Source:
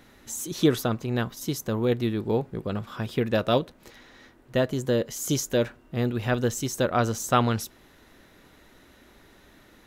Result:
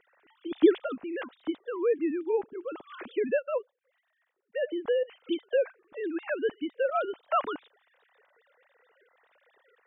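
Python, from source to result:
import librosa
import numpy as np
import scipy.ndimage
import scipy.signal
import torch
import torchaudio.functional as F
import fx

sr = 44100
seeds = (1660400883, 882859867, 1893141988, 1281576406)

y = fx.sine_speech(x, sr)
y = fx.upward_expand(y, sr, threshold_db=-42.0, expansion=1.5, at=(3.38, 4.61), fade=0.02)
y = y * 10.0 ** (-3.5 / 20.0)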